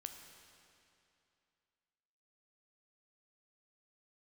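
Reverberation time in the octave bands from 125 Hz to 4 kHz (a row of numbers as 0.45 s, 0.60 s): 2.7 s, 2.7 s, 2.7 s, 2.7 s, 2.6 s, 2.4 s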